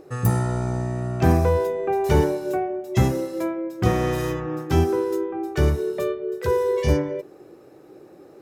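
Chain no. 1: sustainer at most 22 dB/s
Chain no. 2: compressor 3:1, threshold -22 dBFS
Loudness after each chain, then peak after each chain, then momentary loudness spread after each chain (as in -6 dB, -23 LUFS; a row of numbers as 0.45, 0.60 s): -21.0, -27.0 LUFS; -6.0, -11.0 dBFS; 9, 4 LU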